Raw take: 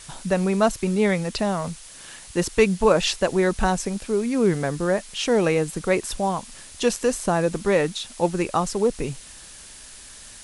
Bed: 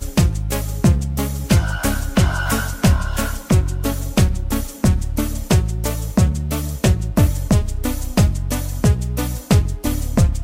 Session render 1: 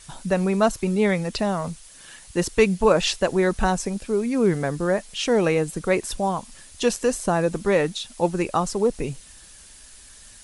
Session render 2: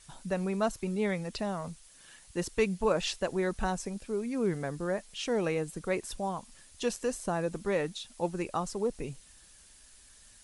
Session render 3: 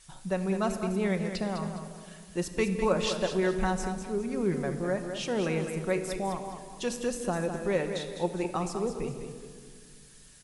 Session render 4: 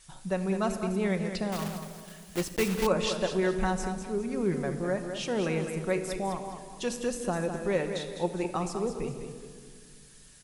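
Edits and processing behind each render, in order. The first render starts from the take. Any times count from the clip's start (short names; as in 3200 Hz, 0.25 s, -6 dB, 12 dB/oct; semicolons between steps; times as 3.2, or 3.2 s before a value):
denoiser 6 dB, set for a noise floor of -44 dBFS
gain -10 dB
feedback echo 0.204 s, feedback 33%, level -8.5 dB; shoebox room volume 3900 m³, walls mixed, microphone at 1 m
1.52–2.87 block floating point 3-bit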